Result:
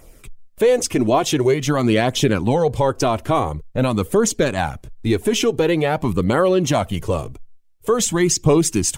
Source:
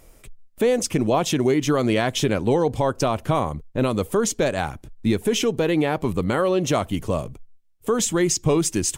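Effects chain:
flanger 0.47 Hz, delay 0.1 ms, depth 3.1 ms, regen −34%
level +7 dB

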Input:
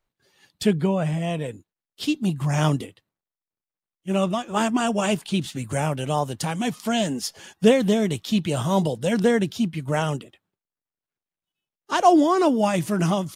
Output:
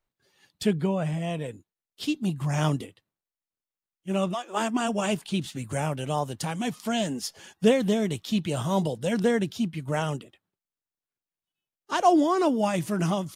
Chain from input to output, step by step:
0:04.33–0:04.87: high-pass filter 430 Hz → 140 Hz 24 dB per octave
level −4 dB

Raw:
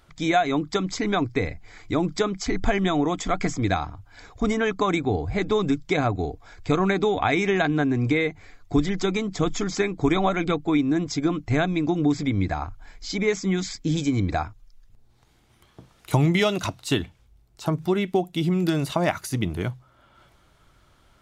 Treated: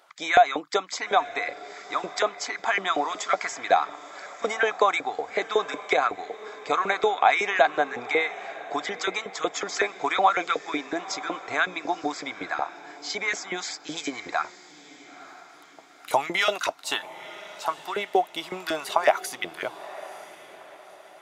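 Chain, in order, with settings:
auto-filter high-pass saw up 5.4 Hz 500–1,800 Hz
feedback delay with all-pass diffusion 949 ms, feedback 42%, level −16 dB

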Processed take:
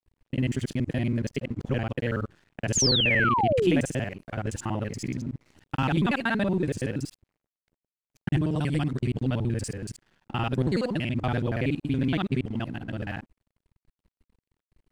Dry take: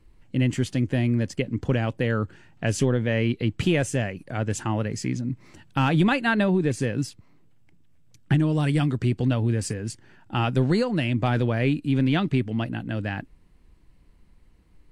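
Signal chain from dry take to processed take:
reversed piece by piece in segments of 47 ms
dead-zone distortion −50.5 dBFS
sound drawn into the spectrogram fall, 0:02.75–0:03.81, 230–7,300 Hz −20 dBFS
level −3.5 dB

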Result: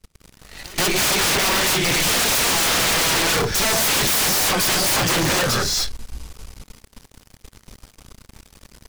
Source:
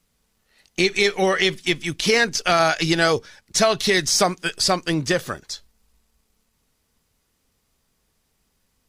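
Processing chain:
Bessel low-pass filter 11,000 Hz
low-shelf EQ 100 Hz +10.5 dB
in parallel at +3 dB: downward compressor, threshold −27 dBFS, peak gain reduction 14 dB
on the sum: reverb whose tail is shaped and stops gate 310 ms rising, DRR −1 dB
wrap-around overflow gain 12 dB
leveller curve on the samples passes 5
backwards echo 139 ms −21.5 dB
level −5.5 dB

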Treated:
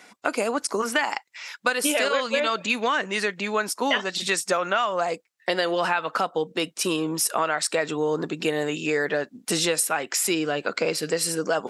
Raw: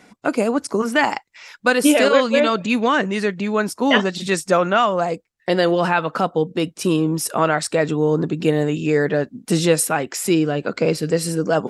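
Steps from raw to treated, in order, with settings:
high-pass filter 960 Hz 6 dB per octave
downward compressor 6 to 1, threshold −23 dBFS, peak gain reduction 10 dB
level +3.5 dB

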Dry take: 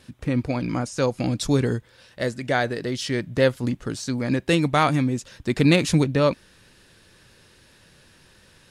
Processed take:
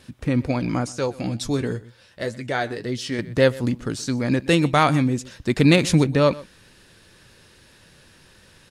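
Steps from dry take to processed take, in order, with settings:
single-tap delay 124 ms −20.5 dB
0:00.92–0:03.19: flanger 2 Hz, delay 7.9 ms, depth 4.1 ms, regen +45%
level +2 dB

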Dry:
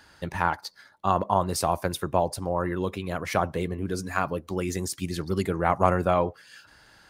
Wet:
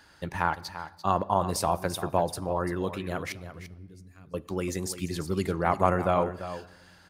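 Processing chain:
0:03.32–0:04.34: guitar amp tone stack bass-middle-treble 10-0-1
single-tap delay 342 ms −12 dB
on a send at −19 dB: convolution reverb RT60 1.5 s, pre-delay 6 ms
on the sum: level −2 dB

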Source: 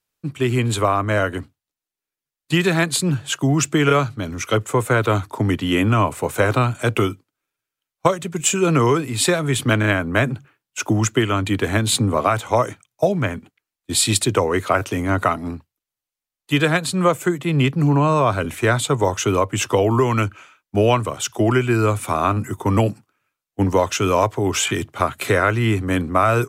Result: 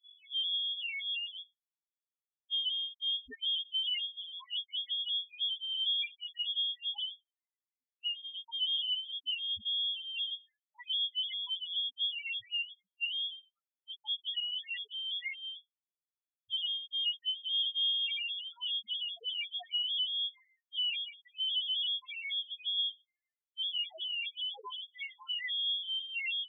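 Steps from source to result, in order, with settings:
turntable start at the beginning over 0.64 s
spectral peaks only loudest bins 1
voice inversion scrambler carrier 3,400 Hz
level −8.5 dB

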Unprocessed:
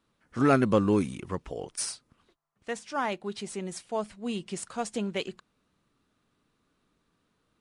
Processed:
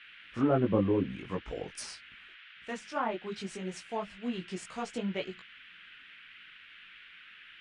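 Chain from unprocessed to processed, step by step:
multi-voice chorus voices 6, 1.4 Hz, delay 19 ms, depth 3.2 ms
treble cut that deepens with the level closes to 840 Hz, closed at −24.5 dBFS
noise in a band 1,400–3,200 Hz −53 dBFS

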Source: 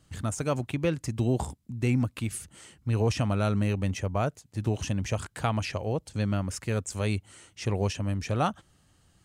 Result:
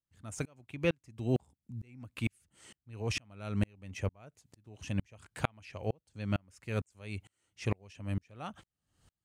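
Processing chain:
dynamic equaliser 2,400 Hz, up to +6 dB, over −51 dBFS, Q 2.1
tremolo with a ramp in dB swelling 2.2 Hz, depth 39 dB

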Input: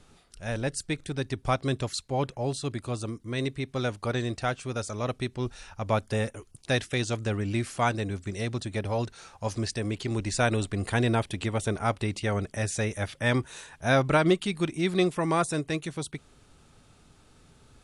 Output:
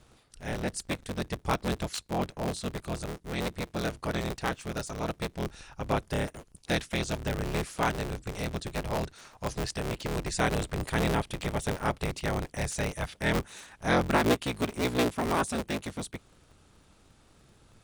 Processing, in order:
sub-harmonics by changed cycles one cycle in 3, inverted
level −2.5 dB

